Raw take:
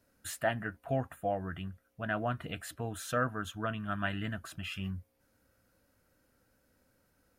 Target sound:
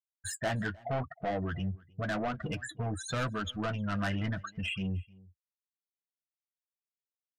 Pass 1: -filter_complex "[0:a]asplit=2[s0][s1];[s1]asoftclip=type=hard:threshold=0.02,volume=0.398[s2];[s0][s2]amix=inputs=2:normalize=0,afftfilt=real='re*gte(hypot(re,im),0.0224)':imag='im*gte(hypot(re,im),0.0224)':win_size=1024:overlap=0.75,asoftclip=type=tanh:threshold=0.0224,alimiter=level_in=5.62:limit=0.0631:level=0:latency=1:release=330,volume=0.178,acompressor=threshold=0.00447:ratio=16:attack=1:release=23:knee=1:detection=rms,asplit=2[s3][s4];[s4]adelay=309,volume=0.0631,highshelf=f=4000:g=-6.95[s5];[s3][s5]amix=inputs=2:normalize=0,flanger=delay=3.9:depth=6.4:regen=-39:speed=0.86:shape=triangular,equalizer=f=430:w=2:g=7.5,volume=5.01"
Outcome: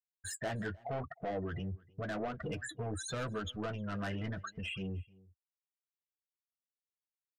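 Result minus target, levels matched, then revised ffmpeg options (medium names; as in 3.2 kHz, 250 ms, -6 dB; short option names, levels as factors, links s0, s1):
compression: peak gain reduction +7.5 dB; 500 Hz band +2.0 dB
-filter_complex "[0:a]asplit=2[s0][s1];[s1]asoftclip=type=hard:threshold=0.02,volume=0.398[s2];[s0][s2]amix=inputs=2:normalize=0,afftfilt=real='re*gte(hypot(re,im),0.0224)':imag='im*gte(hypot(re,im),0.0224)':win_size=1024:overlap=0.75,asoftclip=type=tanh:threshold=0.0224,alimiter=level_in=5.62:limit=0.0631:level=0:latency=1:release=330,volume=0.178,asplit=2[s3][s4];[s4]adelay=309,volume=0.0631,highshelf=f=4000:g=-6.95[s5];[s3][s5]amix=inputs=2:normalize=0,flanger=delay=3.9:depth=6.4:regen=-39:speed=0.86:shape=triangular,volume=5.01"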